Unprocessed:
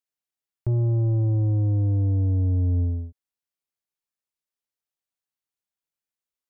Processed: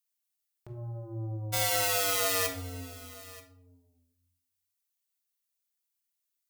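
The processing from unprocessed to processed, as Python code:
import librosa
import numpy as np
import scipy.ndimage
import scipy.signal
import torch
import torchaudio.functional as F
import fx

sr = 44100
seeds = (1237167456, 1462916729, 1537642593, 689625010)

p1 = fx.overflow_wrap(x, sr, gain_db=21.0, at=(1.52, 2.46), fade=0.02)
p2 = fx.tilt_eq(p1, sr, slope=4.0)
p3 = fx.hum_notches(p2, sr, base_hz=50, count=7)
p4 = p3 + fx.echo_single(p3, sr, ms=931, db=-19.5, dry=0)
p5 = fx.room_shoebox(p4, sr, seeds[0], volume_m3=1000.0, walls='furnished', distance_m=1.9)
y = F.gain(torch.from_numpy(p5), -7.0).numpy()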